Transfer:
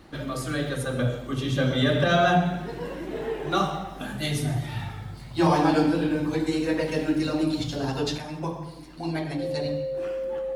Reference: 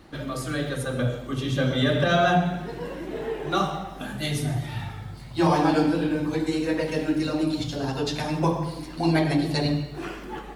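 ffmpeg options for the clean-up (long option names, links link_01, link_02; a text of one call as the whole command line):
ffmpeg -i in.wav -af "bandreject=frequency=530:width=30,asetnsamples=nb_out_samples=441:pad=0,asendcmd='8.18 volume volume 8dB',volume=0dB" out.wav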